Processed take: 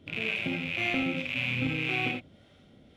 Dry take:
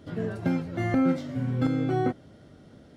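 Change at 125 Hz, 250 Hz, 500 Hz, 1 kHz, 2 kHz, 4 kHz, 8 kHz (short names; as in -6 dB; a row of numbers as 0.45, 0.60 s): -8.0 dB, -8.0 dB, -7.5 dB, -5.5 dB, +11.0 dB, +14.5 dB, n/a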